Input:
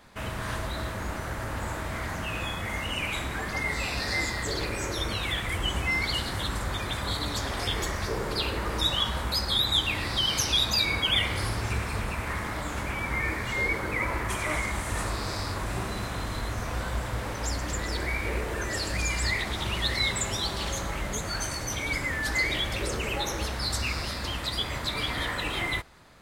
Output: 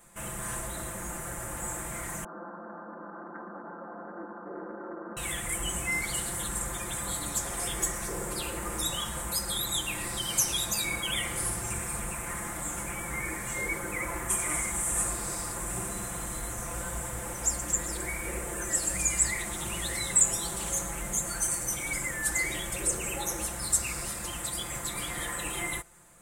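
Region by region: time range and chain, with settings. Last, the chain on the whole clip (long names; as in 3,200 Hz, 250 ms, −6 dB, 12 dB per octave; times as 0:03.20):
0:02.24–0:05.17: linear-phase brick-wall band-pass 180–1,600 Hz + high-frequency loss of the air 270 metres + highs frequency-modulated by the lows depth 0.17 ms
whole clip: high shelf with overshoot 6,100 Hz +11 dB, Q 3; comb filter 5.8 ms, depth 76%; level −6.5 dB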